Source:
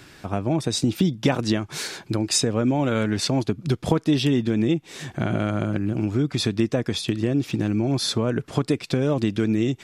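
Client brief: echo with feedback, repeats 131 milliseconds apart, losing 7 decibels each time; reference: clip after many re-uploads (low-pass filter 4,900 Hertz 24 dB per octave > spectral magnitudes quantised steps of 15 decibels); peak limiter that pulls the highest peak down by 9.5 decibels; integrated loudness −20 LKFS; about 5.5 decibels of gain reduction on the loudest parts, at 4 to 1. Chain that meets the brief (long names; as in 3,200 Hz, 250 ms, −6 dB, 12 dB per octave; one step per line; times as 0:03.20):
downward compressor 4 to 1, threshold −22 dBFS
brickwall limiter −19 dBFS
low-pass filter 4,900 Hz 24 dB per octave
repeating echo 131 ms, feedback 45%, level −7 dB
spectral magnitudes quantised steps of 15 dB
level +9.5 dB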